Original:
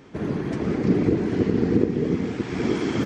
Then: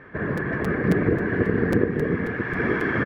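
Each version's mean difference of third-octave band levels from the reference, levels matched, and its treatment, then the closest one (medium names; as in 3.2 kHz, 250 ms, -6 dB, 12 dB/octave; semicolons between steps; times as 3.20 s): 5.0 dB: resonant low-pass 1.7 kHz, resonance Q 5.2; comb 1.8 ms, depth 33%; crackling interface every 0.27 s, samples 256, repeat, from 0.37 s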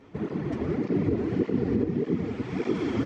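2.5 dB: low-pass 2.8 kHz 6 dB/octave; band-stop 1.6 kHz, Q 14; in parallel at +2 dB: peak limiter -14 dBFS, peak gain reduction 8 dB; on the sum: cancelling through-zero flanger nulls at 1.7 Hz, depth 7 ms; trim -7.5 dB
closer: second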